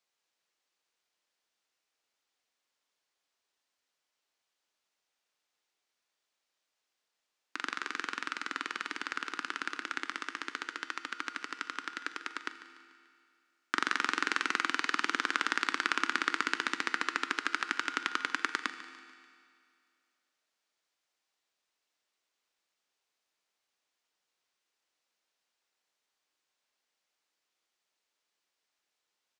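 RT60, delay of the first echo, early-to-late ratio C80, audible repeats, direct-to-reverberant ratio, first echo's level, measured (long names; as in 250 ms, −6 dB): 2.3 s, 146 ms, 10.5 dB, 4, 9.0 dB, −15.5 dB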